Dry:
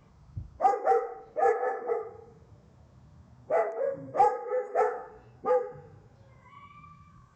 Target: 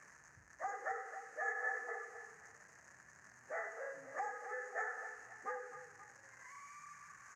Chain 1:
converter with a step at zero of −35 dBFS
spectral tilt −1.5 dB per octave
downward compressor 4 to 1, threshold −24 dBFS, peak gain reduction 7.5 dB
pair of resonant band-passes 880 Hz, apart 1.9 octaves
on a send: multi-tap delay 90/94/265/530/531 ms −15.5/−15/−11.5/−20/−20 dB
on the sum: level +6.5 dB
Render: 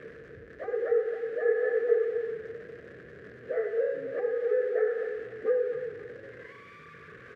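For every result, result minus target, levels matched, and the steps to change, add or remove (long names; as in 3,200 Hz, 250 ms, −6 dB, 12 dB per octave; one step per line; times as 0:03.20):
1,000 Hz band −18.0 dB; converter with a step at zero: distortion +8 dB
change: pair of resonant band-passes 3,400 Hz, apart 1.9 octaves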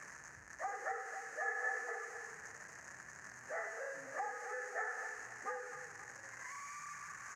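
converter with a step at zero: distortion +8 dB
change: converter with a step at zero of −44 dBFS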